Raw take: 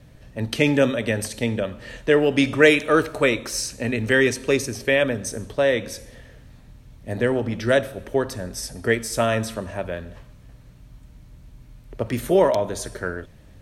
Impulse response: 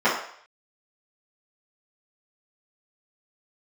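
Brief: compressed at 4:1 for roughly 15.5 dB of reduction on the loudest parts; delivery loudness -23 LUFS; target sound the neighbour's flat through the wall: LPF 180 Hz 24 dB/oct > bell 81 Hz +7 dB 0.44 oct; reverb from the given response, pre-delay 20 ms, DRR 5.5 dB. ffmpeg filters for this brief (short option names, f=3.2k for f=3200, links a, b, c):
-filter_complex "[0:a]acompressor=threshold=-28dB:ratio=4,asplit=2[a][b];[1:a]atrim=start_sample=2205,adelay=20[c];[b][c]afir=irnorm=-1:irlink=0,volume=-25dB[d];[a][d]amix=inputs=2:normalize=0,lowpass=f=180:w=0.5412,lowpass=f=180:w=1.3066,equalizer=f=81:t=o:w=0.44:g=7,volume=18dB"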